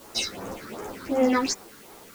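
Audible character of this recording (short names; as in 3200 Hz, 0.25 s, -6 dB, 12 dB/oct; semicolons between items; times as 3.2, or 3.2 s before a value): phasing stages 6, 2.7 Hz, lowest notch 700–4600 Hz; a quantiser's noise floor 10-bit, dither triangular; a shimmering, thickened sound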